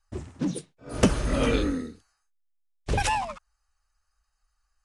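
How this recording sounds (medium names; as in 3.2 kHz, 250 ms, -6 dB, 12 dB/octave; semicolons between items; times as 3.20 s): noise floor -77 dBFS; spectral tilt -5.0 dB/octave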